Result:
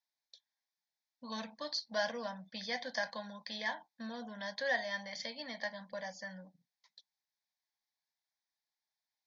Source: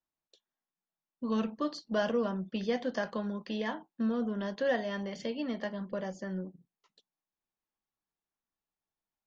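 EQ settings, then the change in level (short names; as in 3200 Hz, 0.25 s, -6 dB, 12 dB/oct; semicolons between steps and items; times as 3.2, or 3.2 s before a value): LPF 5300 Hz 12 dB/oct; tilt +4.5 dB/oct; fixed phaser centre 1900 Hz, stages 8; 0.0 dB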